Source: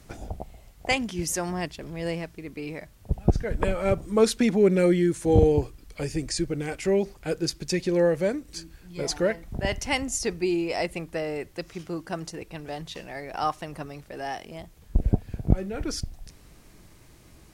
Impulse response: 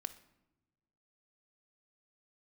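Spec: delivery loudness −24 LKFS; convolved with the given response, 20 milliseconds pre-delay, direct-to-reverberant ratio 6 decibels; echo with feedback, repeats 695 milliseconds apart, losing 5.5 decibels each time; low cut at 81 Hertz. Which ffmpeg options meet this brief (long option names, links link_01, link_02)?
-filter_complex "[0:a]highpass=81,aecho=1:1:695|1390|2085|2780|3475|4170|4865:0.531|0.281|0.149|0.079|0.0419|0.0222|0.0118,asplit=2[link_01][link_02];[1:a]atrim=start_sample=2205,adelay=20[link_03];[link_02][link_03]afir=irnorm=-1:irlink=0,volume=-3.5dB[link_04];[link_01][link_04]amix=inputs=2:normalize=0,volume=1dB"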